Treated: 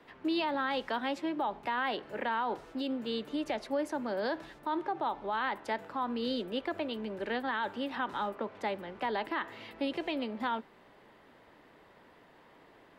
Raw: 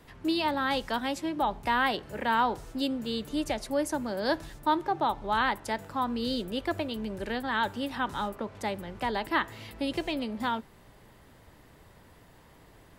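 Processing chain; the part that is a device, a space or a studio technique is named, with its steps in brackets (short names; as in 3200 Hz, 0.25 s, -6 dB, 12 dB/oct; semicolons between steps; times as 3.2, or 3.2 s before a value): DJ mixer with the lows and highs turned down (three-band isolator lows -18 dB, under 210 Hz, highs -16 dB, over 4000 Hz; limiter -24.5 dBFS, peak gain reduction 9.5 dB)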